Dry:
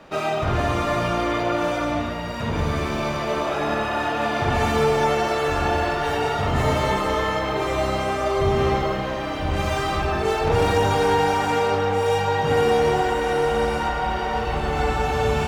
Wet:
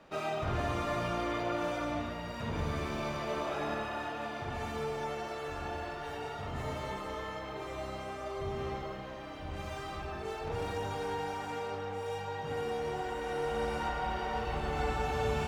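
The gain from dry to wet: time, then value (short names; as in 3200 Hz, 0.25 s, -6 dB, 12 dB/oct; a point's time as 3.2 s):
3.61 s -11 dB
4.47 s -17 dB
12.81 s -17 dB
13.86 s -10.5 dB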